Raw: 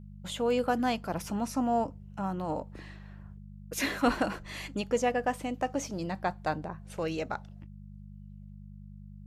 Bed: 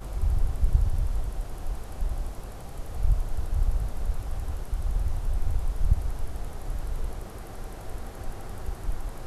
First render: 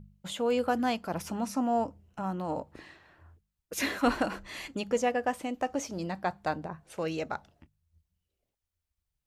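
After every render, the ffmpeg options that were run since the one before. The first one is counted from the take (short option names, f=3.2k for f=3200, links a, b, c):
-af "bandreject=f=50:t=h:w=4,bandreject=f=100:t=h:w=4,bandreject=f=150:t=h:w=4,bandreject=f=200:t=h:w=4"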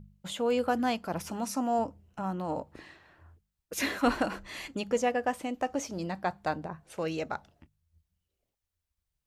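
-filter_complex "[0:a]asettb=1/sr,asplit=3[a][b][c];[a]atrim=end=1.314[d];[b]atrim=start=1.31:end=1.79,asetpts=PTS-STARTPTS,afade=t=in:d=0.004:c=qsin,afade=t=out:st=0.476:d=0.004:c=qsin,bass=f=250:g=-4,treble=f=4k:g=5[e];[c]atrim=start=1.786[f];[d][e]acrossfade=d=0.004:c1=hsin:c2=qsin[g];[g][f]acrossfade=d=0.004:c1=qsin:c2=hsin"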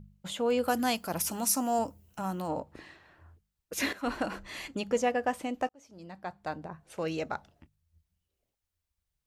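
-filter_complex "[0:a]asplit=3[a][b][c];[a]afade=t=out:st=0.63:d=0.02[d];[b]aemphasis=mode=production:type=75fm,afade=t=in:st=0.63:d=0.02,afade=t=out:st=2.47:d=0.02[e];[c]afade=t=in:st=2.47:d=0.02[f];[d][e][f]amix=inputs=3:normalize=0,asplit=3[g][h][i];[g]atrim=end=3.93,asetpts=PTS-STARTPTS,afade=t=out:st=3.926:d=0.004:c=hsin:silence=0.223872[j];[h]atrim=start=3.93:end=5.69,asetpts=PTS-STARTPTS,afade=t=in:d=0.47:silence=0.223872,afade=t=out:st=1.756:d=0.004:c=hsin[k];[i]atrim=start=5.69,asetpts=PTS-STARTPTS,afade=t=in:d=1.43[l];[j][k][l]concat=n=3:v=0:a=1"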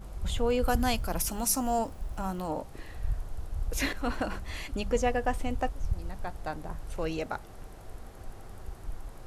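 -filter_complex "[1:a]volume=-8dB[a];[0:a][a]amix=inputs=2:normalize=0"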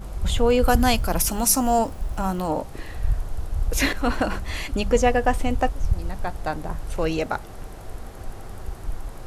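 -af "volume=8.5dB"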